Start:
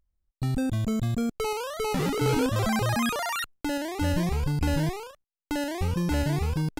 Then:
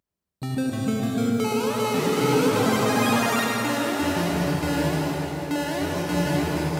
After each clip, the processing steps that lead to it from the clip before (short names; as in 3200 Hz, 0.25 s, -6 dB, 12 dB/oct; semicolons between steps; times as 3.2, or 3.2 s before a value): HPF 170 Hz 12 dB/oct; reverb RT60 4.5 s, pre-delay 63 ms, DRR -2.5 dB; gain +1.5 dB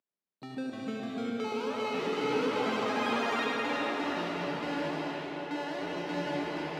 three-band isolator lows -22 dB, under 200 Hz, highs -21 dB, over 5300 Hz; on a send: delay with a stepping band-pass 0.367 s, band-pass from 2600 Hz, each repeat -1.4 oct, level -0.5 dB; on the sum: gain -8.5 dB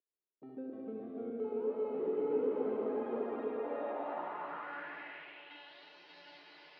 reverse delay 0.231 s, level -6 dB; band-pass sweep 400 Hz -> 4700 Hz, 3.49–5.93; air absorption 320 m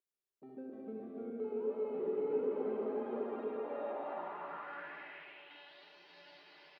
comb 5.1 ms, depth 36%; gain -2.5 dB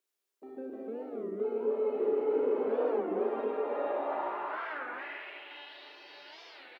HPF 260 Hz 24 dB/oct; on a send: early reflections 36 ms -6.5 dB, 53 ms -6 dB; on the sum: record warp 33 1/3 rpm, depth 250 cents; gain +6.5 dB